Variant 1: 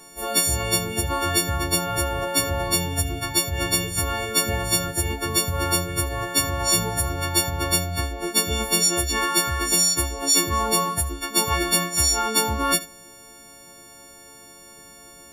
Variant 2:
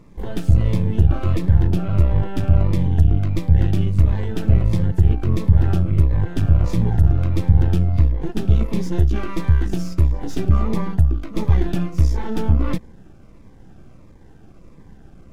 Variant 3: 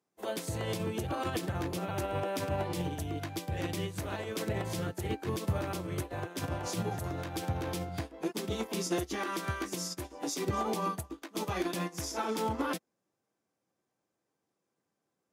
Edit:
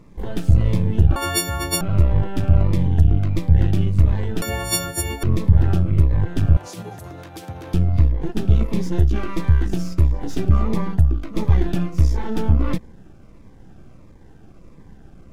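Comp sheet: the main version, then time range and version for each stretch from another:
2
0:01.16–0:01.81: punch in from 1
0:04.42–0:05.23: punch in from 1
0:06.57–0:07.74: punch in from 3

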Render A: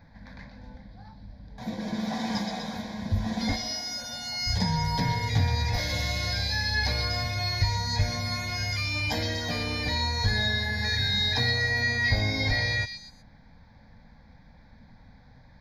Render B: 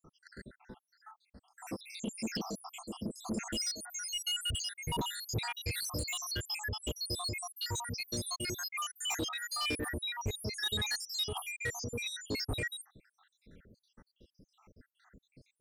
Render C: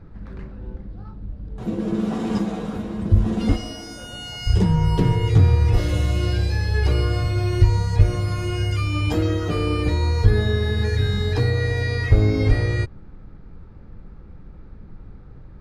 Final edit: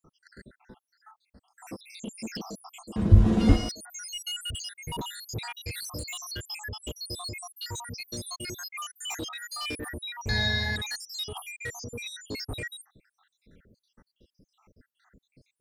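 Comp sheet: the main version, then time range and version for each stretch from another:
B
0:02.96–0:03.69: punch in from C
0:10.29–0:10.76: punch in from A

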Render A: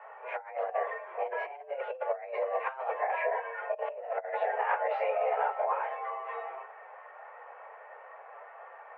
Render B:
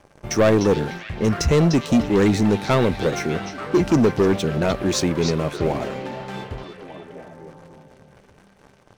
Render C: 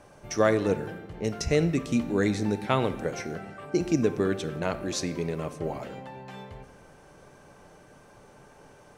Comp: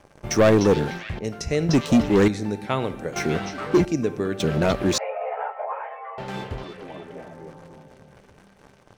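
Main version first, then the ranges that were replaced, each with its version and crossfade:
B
0:01.19–0:01.69: punch in from C
0:02.28–0:03.16: punch in from C
0:03.85–0:04.40: punch in from C
0:04.98–0:06.18: punch in from A

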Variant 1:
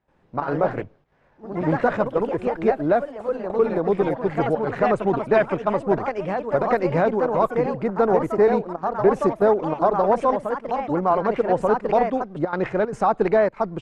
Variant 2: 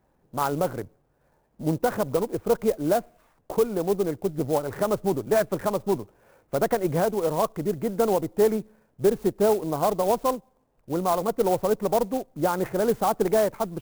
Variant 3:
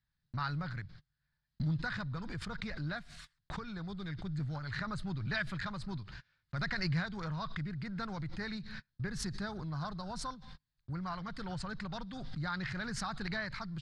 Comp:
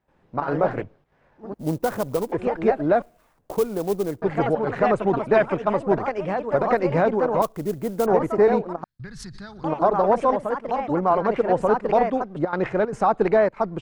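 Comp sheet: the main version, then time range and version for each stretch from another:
1
0:01.54–0:02.32: punch in from 2
0:03.02–0:04.22: punch in from 2
0:07.42–0:08.06: punch in from 2
0:08.84–0:09.64: punch in from 3

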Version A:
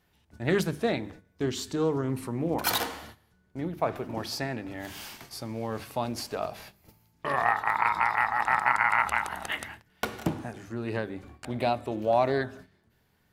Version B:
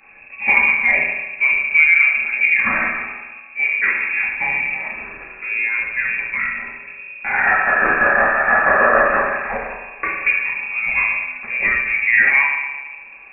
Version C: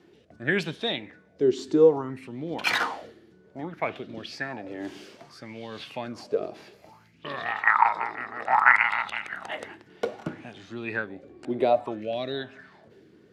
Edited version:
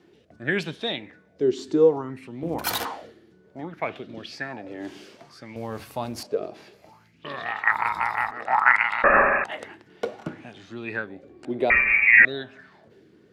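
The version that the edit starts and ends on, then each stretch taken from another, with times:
C
0:02.43–0:02.85: punch in from A
0:05.56–0:06.23: punch in from A
0:07.72–0:08.31: punch in from A
0:09.04–0:09.44: punch in from B
0:11.70–0:12.25: punch in from B

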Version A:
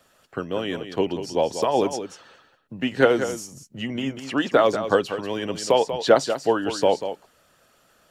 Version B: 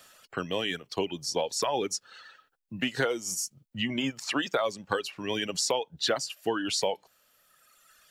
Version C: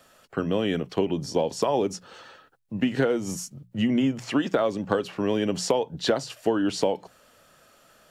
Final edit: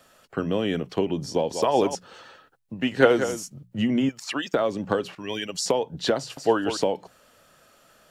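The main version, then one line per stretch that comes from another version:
C
0:01.51–0:01.95: punch in from A
0:02.74–0:03.43: punch in from A
0:04.09–0:04.54: punch in from B
0:05.15–0:05.66: punch in from B
0:06.37–0:06.77: punch in from A

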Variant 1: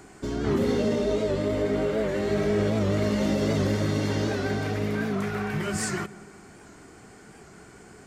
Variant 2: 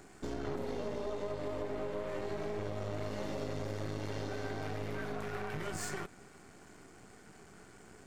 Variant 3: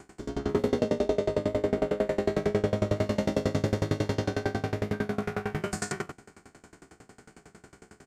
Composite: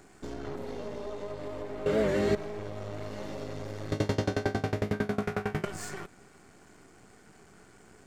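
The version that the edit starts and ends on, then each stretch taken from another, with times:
2
0:01.86–0:02.35: punch in from 1
0:03.92–0:05.65: punch in from 3

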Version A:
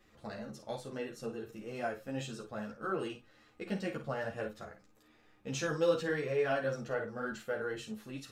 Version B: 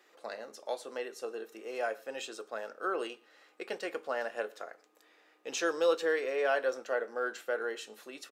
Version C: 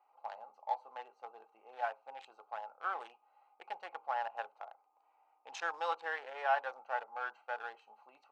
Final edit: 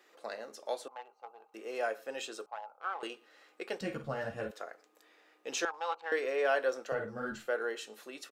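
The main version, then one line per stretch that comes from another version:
B
0:00.88–0:01.54: punch in from C
0:02.46–0:03.03: punch in from C
0:03.81–0:04.51: punch in from A
0:05.65–0:06.12: punch in from C
0:06.92–0:07.47: punch in from A

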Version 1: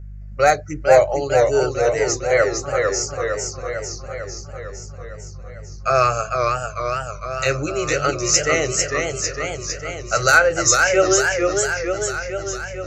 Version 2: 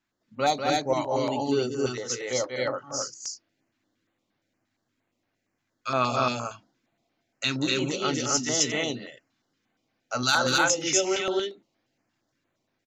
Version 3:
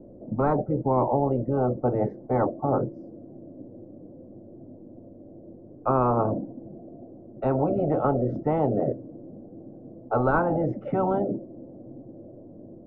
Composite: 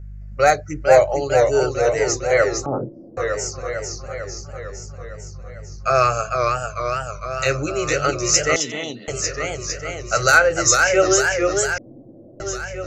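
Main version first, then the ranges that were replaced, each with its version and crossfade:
1
0:02.66–0:03.17: punch in from 3
0:08.56–0:09.08: punch in from 2
0:11.78–0:12.40: punch in from 3

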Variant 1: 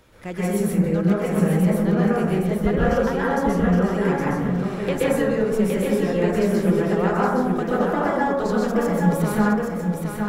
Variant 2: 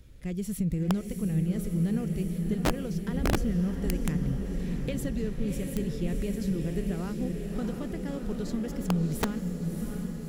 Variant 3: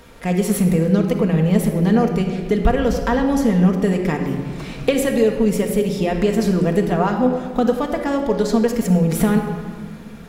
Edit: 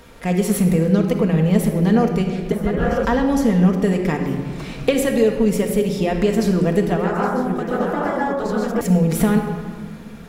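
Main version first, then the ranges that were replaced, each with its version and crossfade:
3
0:02.52–0:03.05: punch in from 1
0:06.97–0:08.81: punch in from 1
not used: 2

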